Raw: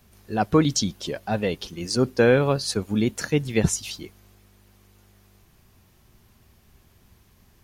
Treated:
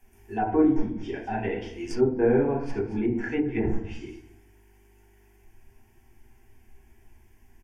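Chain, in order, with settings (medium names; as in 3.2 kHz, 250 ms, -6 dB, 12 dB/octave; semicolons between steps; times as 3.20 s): tracing distortion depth 0.031 ms; static phaser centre 820 Hz, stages 8; delay 219 ms -18 dB; reverberation RT60 0.55 s, pre-delay 5 ms, DRR -4 dB; low-pass that closes with the level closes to 1 kHz, closed at -16 dBFS; trim -5 dB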